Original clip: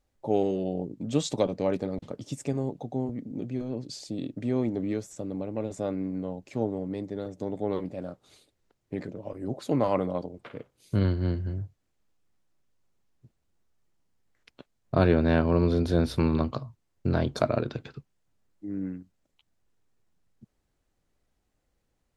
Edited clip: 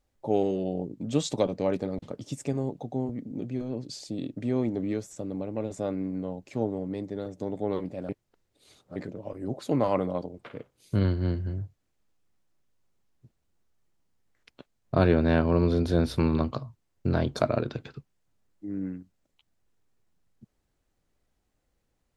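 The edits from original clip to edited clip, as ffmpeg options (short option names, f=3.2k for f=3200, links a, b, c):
-filter_complex "[0:a]asplit=3[a][b][c];[a]atrim=end=8.092[d];[b]atrim=start=8.088:end=8.962,asetpts=PTS-STARTPTS,areverse[e];[c]atrim=start=8.958[f];[d][e]acrossfade=d=0.004:c1=hsin:c2=hsin[g];[g][f]acrossfade=d=0.004:c1=hsin:c2=hsin"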